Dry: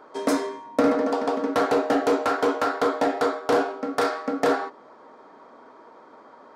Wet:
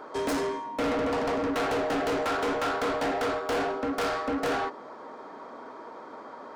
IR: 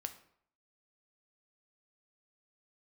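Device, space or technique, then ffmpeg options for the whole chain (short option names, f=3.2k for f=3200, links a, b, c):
saturation between pre-emphasis and de-emphasis: -af "highshelf=f=4.6k:g=7,asoftclip=type=tanh:threshold=-31dB,highshelf=f=4.6k:g=-7,volume=5.5dB"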